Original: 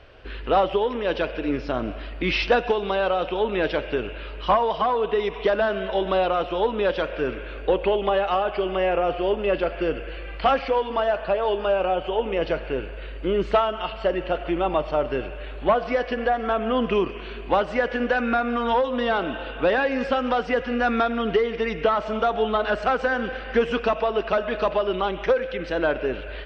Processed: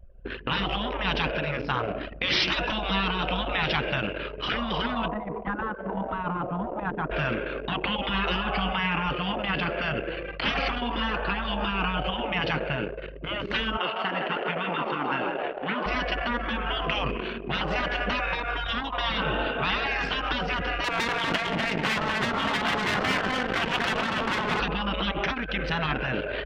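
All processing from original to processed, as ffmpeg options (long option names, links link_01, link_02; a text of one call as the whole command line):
ffmpeg -i in.wav -filter_complex "[0:a]asettb=1/sr,asplit=3[link_01][link_02][link_03];[link_01]atrim=end=5.084[link_04];[link_02]atrim=start=5.08:end=7.11,asetpts=PTS-STARTPTS,afade=type=in:duration=0.004:curve=qsin,afade=type=out:start_time=2.026:duration=0.004:curve=qsin,lowpass=1000,bandreject=frequency=50:width_type=h:width=6,bandreject=frequency=100:width_type=h:width=6,aecho=1:1:150:0.133,atrim=end_sample=89523[link_05];[link_03]atrim=start=7.106[link_06];[link_04][link_05]acrossfade=duration=0.004:curve1=hsin:curve2=qsin[link_07];[link_07][link_06]acrossfade=duration=0.004:curve1=qsin:curve2=hsin,asettb=1/sr,asplit=3[link_08][link_09][link_10];[link_08]atrim=end=13.774[link_11];[link_09]atrim=start=13.77:end=15.86,asetpts=PTS-STARTPTS,afade=type=in:duration=0.004:curve=qsin,afade=type=out:start_time=2.086:duration=0.004:curve=qsin,highpass=frequency=120:width=0.5412,highpass=frequency=120:width=1.3066,bass=frequency=250:gain=-12,treble=frequency=4000:gain=-11,asplit=7[link_12][link_13][link_14][link_15][link_16][link_17][link_18];[link_13]adelay=158,afreqshift=37,volume=-7.5dB[link_19];[link_14]adelay=316,afreqshift=74,volume=-13.3dB[link_20];[link_15]adelay=474,afreqshift=111,volume=-19.2dB[link_21];[link_16]adelay=632,afreqshift=148,volume=-25dB[link_22];[link_17]adelay=790,afreqshift=185,volume=-30.9dB[link_23];[link_18]adelay=948,afreqshift=222,volume=-36.7dB[link_24];[link_12][link_19][link_20][link_21][link_22][link_23][link_24]amix=inputs=7:normalize=0,atrim=end_sample=92169[link_25];[link_10]atrim=start=15.856[link_26];[link_11][link_25]acrossfade=duration=0.004:curve1=hsin:curve2=qsin[link_27];[link_27][link_26]acrossfade=duration=0.004:curve1=qsin:curve2=hsin,asettb=1/sr,asplit=3[link_28][link_29][link_30];[link_28]atrim=end=20.844[link_31];[link_29]atrim=start=20.84:end=24.6,asetpts=PTS-STARTPTS,afade=type=in:duration=0.004:curve=qsin,afade=type=out:start_time=3.756:duration=0.004:curve=qsin,aecho=1:1:116|179|245|284|474:0.168|0.224|0.562|0.15|0.106,atrim=end_sample=165816,aeval=exprs='max(val(0),0)':channel_layout=same[link_32];[link_30]atrim=start=24.596[link_33];[link_31][link_32]acrossfade=duration=0.004:curve1=hsin:curve2=qsin[link_34];[link_34][link_33]acrossfade=duration=0.004:curve1=qsin:curve2=hsin,afftfilt=real='re*lt(hypot(re,im),0.141)':imag='im*lt(hypot(re,im),0.141)':win_size=1024:overlap=0.75,anlmdn=1.58,equalizer=frequency=160:width_type=o:width=1.3:gain=3.5,volume=7dB" out.wav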